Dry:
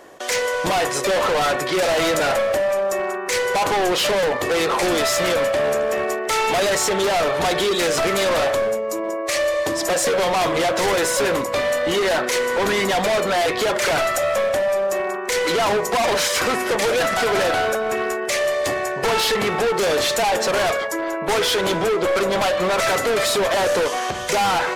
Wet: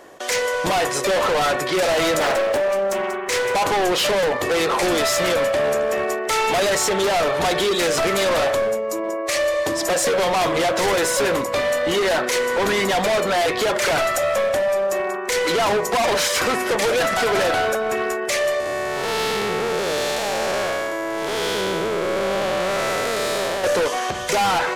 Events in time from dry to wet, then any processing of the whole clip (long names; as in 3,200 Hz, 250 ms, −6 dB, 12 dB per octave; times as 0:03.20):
0:02.20–0:03.55: highs frequency-modulated by the lows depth 0.44 ms
0:18.60–0:23.64: spectrum smeared in time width 323 ms